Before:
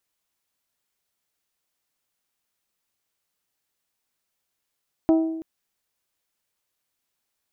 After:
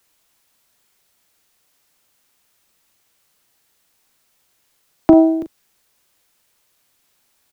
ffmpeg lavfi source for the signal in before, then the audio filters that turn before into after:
-f lavfi -i "aevalsrc='0.224*pow(10,-3*t/1.01)*sin(2*PI*323*t)+0.0891*pow(10,-3*t/0.622)*sin(2*PI*646*t)+0.0355*pow(10,-3*t/0.547)*sin(2*PI*775.2*t)+0.0141*pow(10,-3*t/0.468)*sin(2*PI*969*t)+0.00562*pow(10,-3*t/0.383)*sin(2*PI*1292*t)':duration=0.33:sample_rate=44100"
-filter_complex "[0:a]acrossover=split=100|250|510[link_01][link_02][link_03][link_04];[link_01]acrusher=samples=37:mix=1:aa=0.000001[link_05];[link_05][link_02][link_03][link_04]amix=inputs=4:normalize=0,asplit=2[link_06][link_07];[link_07]adelay=39,volume=-10dB[link_08];[link_06][link_08]amix=inputs=2:normalize=0,alimiter=level_in=15dB:limit=-1dB:release=50:level=0:latency=1"

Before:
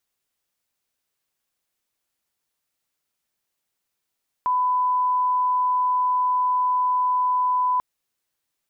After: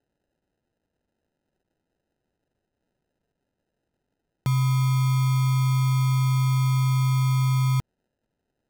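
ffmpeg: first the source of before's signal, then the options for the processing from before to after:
-f lavfi -i "sine=frequency=1000:duration=3.34:sample_rate=44100,volume=0.06dB"
-af "acrusher=samples=39:mix=1:aa=0.000001"

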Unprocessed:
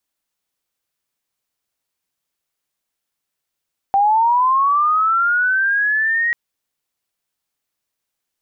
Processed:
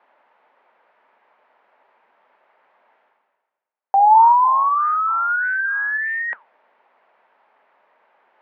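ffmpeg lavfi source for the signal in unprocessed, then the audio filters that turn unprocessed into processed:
-f lavfi -i "aevalsrc='pow(10,(-11-4*t/2.39)/20)*sin(2*PI*(780*t+1120*t*t/(2*2.39)))':duration=2.39:sample_rate=44100"
-af "areverse,acompressor=mode=upward:threshold=-23dB:ratio=2.5,areverse,flanger=delay=2.4:depth=7.5:regen=85:speed=1.6:shape=sinusoidal,highpass=frequency=280:width=0.5412,highpass=frequency=280:width=1.3066,equalizer=frequency=310:width_type=q:width=4:gain=-10,equalizer=frequency=610:width_type=q:width=4:gain=6,equalizer=frequency=900:width_type=q:width=4:gain=9,lowpass=frequency=2000:width=0.5412,lowpass=frequency=2000:width=1.3066"

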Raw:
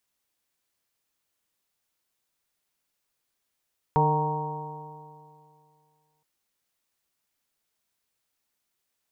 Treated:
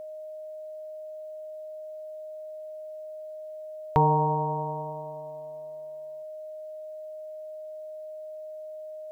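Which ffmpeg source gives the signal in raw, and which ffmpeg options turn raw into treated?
-f lavfi -i "aevalsrc='0.0794*pow(10,-3*t/2.4)*sin(2*PI*150.15*t)+0.0224*pow(10,-3*t/2.4)*sin(2*PI*301.2*t)+0.0562*pow(10,-3*t/2.4)*sin(2*PI*454.03*t)+0.0168*pow(10,-3*t/2.4)*sin(2*PI*609.52*t)+0.0447*pow(10,-3*t/2.4)*sin(2*PI*768.52*t)+0.1*pow(10,-3*t/2.4)*sin(2*PI*931.84*t)+0.0141*pow(10,-3*t/2.4)*sin(2*PI*1100.25*t)':duration=2.27:sample_rate=44100"
-filter_complex "[0:a]asplit=2[link_01][link_02];[link_02]acompressor=threshold=-33dB:ratio=6,volume=0dB[link_03];[link_01][link_03]amix=inputs=2:normalize=0,aeval=exprs='val(0)+0.0141*sin(2*PI*620*n/s)':channel_layout=same"

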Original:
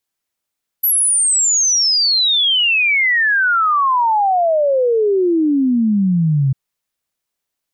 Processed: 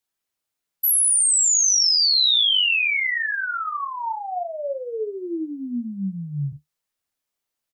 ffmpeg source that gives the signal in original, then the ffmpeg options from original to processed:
-f lavfi -i "aevalsrc='0.266*clip(min(t,5.7-t)/0.01,0,1)*sin(2*PI*12000*5.7/log(130/12000)*(exp(log(130/12000)*t/5.7)-1))':duration=5.7:sample_rate=44100"
-filter_complex "[0:a]acrossover=split=2600[link_01][link_02];[link_01]acompressor=threshold=-25dB:ratio=6[link_03];[link_03][link_02]amix=inputs=2:normalize=0,flanger=delay=8.9:depth=7.9:regen=47:speed=0.26:shape=triangular,asplit=2[link_04][link_05];[link_05]adelay=41,volume=-8.5dB[link_06];[link_04][link_06]amix=inputs=2:normalize=0"

